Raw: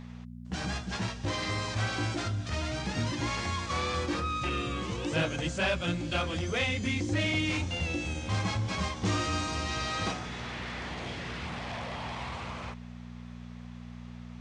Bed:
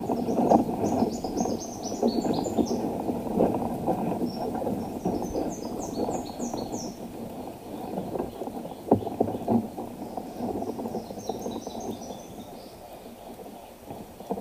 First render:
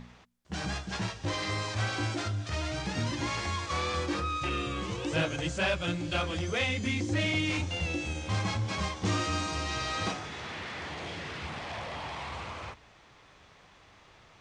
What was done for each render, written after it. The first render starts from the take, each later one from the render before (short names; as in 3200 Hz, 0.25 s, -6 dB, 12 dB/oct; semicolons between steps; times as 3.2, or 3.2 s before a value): de-hum 60 Hz, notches 4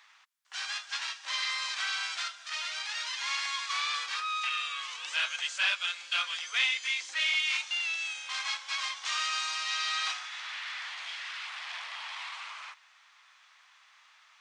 dynamic EQ 3500 Hz, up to +6 dB, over -46 dBFS, Q 0.86; HPF 1100 Hz 24 dB/oct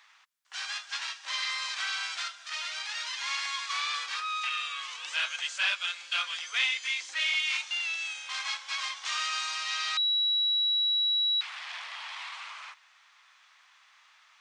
9.97–11.41 bleep 3900 Hz -23.5 dBFS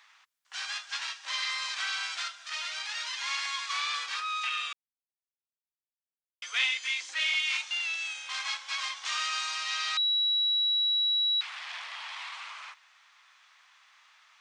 4.73–6.42 mute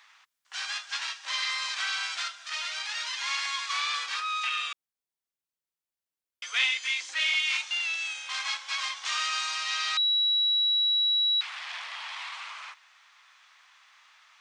gain +2 dB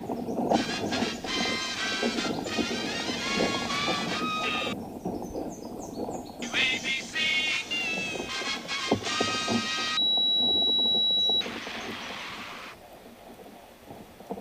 add bed -5 dB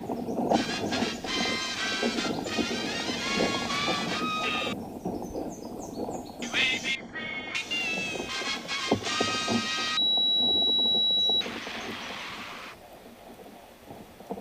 6.95–7.55 polynomial smoothing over 41 samples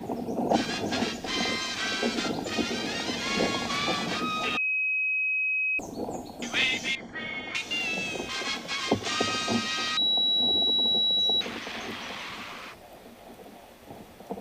4.57–5.79 bleep 2540 Hz -24 dBFS